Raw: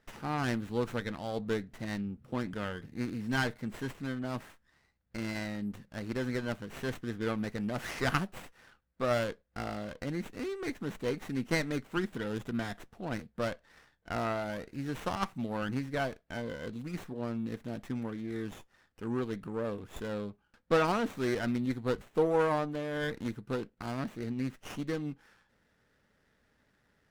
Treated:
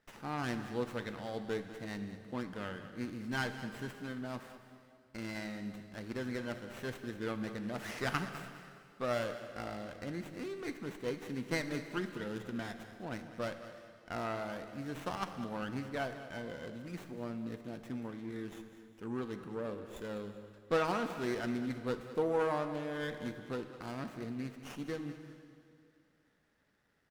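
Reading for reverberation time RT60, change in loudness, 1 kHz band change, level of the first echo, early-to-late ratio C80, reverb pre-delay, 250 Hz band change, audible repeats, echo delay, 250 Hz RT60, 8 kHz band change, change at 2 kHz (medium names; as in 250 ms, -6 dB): 2.5 s, -4.5 dB, -4.0 dB, -14.0 dB, 9.0 dB, 8 ms, -4.5 dB, 2, 201 ms, 2.5 s, -4.0 dB, -4.0 dB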